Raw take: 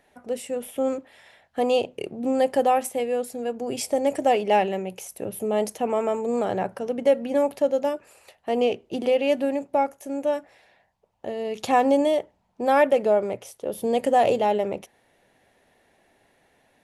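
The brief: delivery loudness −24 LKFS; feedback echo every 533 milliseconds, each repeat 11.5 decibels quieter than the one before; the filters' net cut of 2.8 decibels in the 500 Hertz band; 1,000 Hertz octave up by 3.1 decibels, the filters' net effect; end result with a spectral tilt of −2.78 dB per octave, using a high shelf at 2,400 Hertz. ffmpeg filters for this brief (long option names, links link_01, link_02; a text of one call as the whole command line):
ffmpeg -i in.wav -af "equalizer=frequency=500:width_type=o:gain=-5.5,equalizer=frequency=1000:width_type=o:gain=6,highshelf=frequency=2400:gain=8.5,aecho=1:1:533|1066|1599:0.266|0.0718|0.0194" out.wav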